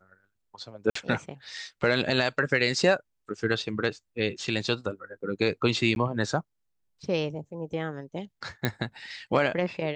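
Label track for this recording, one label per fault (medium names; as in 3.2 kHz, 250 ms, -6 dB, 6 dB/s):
0.900000	0.950000	dropout 54 ms
5.950000	5.960000	dropout 11 ms
8.650000	8.650000	pop -11 dBFS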